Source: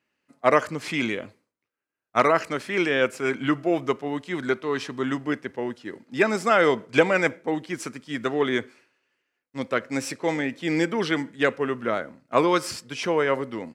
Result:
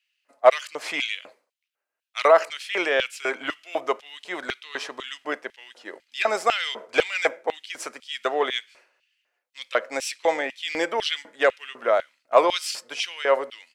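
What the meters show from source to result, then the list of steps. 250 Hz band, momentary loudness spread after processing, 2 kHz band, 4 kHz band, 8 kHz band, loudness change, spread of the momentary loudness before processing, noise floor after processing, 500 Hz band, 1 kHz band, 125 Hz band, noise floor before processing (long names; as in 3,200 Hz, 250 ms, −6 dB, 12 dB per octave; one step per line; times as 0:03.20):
−12.5 dB, 15 LU, −0.5 dB, +5.5 dB, +2.0 dB, 0.0 dB, 10 LU, −84 dBFS, +0.5 dB, +1.0 dB, below −20 dB, −85 dBFS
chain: soft clipping −6 dBFS, distortion −23 dB
auto-filter high-pass square 2 Hz 620–3,000 Hz
level +1 dB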